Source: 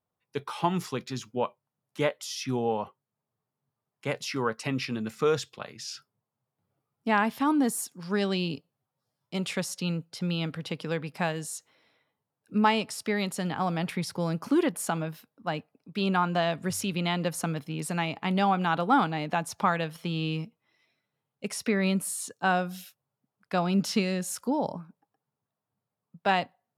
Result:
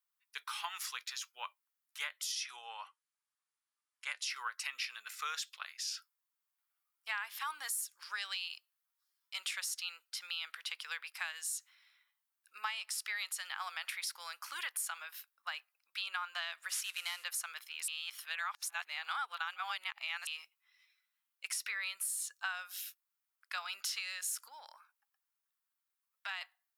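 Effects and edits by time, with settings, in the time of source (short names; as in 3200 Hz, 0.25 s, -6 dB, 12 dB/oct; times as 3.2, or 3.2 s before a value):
2.32–4.3 steep low-pass 11000 Hz 72 dB/oct
16.69–17.24 CVSD 64 kbps
17.88–20.27 reverse
24.48–26.41 compressor 2.5:1, threshold -32 dBFS
whole clip: HPF 1300 Hz 24 dB/oct; high shelf 12000 Hz +10 dB; compressor, threshold -35 dBFS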